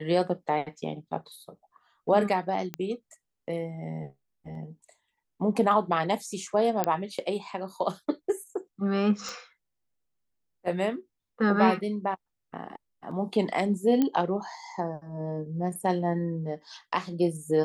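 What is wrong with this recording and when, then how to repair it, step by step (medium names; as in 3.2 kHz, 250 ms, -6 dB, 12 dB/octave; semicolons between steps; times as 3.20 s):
2.74 s: pop -17 dBFS
6.84 s: pop -10 dBFS
9.29 s: pop -22 dBFS
14.02 s: pop -13 dBFS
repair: de-click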